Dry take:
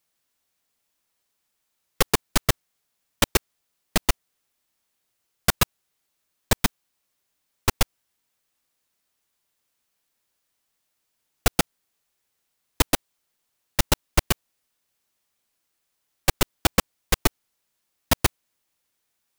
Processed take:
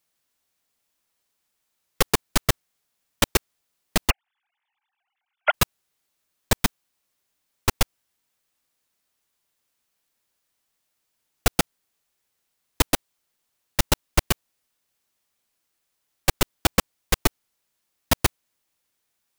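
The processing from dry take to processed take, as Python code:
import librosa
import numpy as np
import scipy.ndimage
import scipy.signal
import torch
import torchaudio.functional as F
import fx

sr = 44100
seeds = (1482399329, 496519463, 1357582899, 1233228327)

y = fx.sine_speech(x, sr, at=(4.1, 5.54))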